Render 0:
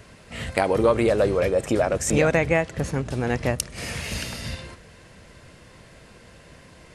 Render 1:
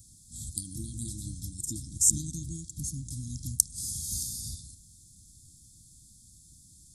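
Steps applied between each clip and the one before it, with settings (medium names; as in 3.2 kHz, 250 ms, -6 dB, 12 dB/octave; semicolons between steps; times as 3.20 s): FFT band-reject 340–3200 Hz; FFT filter 100 Hz 0 dB, 1.8 kHz -26 dB, 7.4 kHz +14 dB; trim -7 dB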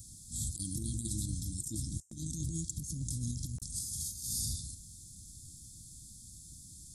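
compressor with a negative ratio -38 dBFS, ratio -0.5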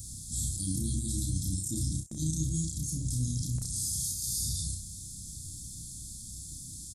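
peak limiter -31 dBFS, peak gain reduction 10.5 dB; on a send: early reflections 32 ms -3.5 dB, 63 ms -9.5 dB; on the sum: trim +6.5 dB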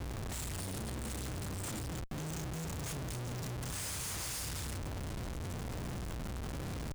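Schmitt trigger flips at -38 dBFS; trim -5.5 dB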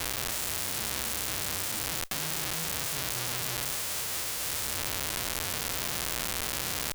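formants flattened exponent 0.3; in parallel at -9.5 dB: word length cut 6-bit, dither none; on the sum: trim +4.5 dB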